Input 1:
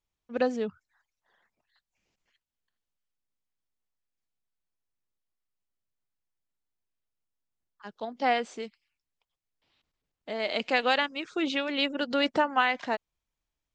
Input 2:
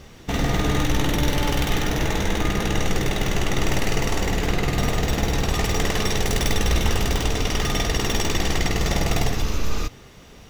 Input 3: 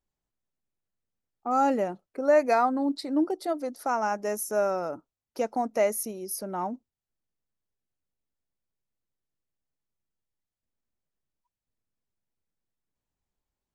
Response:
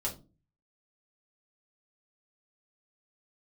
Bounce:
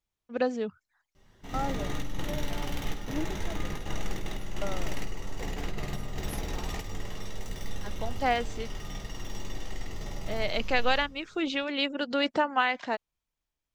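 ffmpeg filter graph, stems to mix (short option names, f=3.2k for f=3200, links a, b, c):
-filter_complex "[0:a]volume=-1dB[a];[1:a]adelay=1150,volume=-15.5dB,asplit=2[b][c];[c]volume=-8dB[d];[2:a]aeval=exprs='val(0)*pow(10,-25*if(lt(mod(0.65*n/s,1),2*abs(0.65)/1000),1-mod(0.65*n/s,1)/(2*abs(0.65)/1000),(mod(0.65*n/s,1)-2*abs(0.65)/1000)/(1-2*abs(0.65)/1000))/20)':c=same,volume=-8.5dB,asplit=2[e][f];[f]apad=whole_len=513444[g];[b][g]sidechaingate=range=-15dB:threshold=-58dB:ratio=16:detection=peak[h];[3:a]atrim=start_sample=2205[i];[d][i]afir=irnorm=-1:irlink=0[j];[a][h][e][j]amix=inputs=4:normalize=0"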